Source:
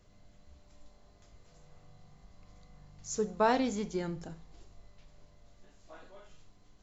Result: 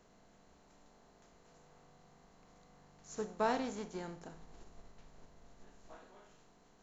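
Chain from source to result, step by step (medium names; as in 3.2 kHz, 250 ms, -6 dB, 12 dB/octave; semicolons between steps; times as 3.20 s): spectral levelling over time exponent 0.6; 4.34–5.96 s: bass shelf 95 Hz +11 dB; upward expansion 1.5:1, over -42 dBFS; trim -7 dB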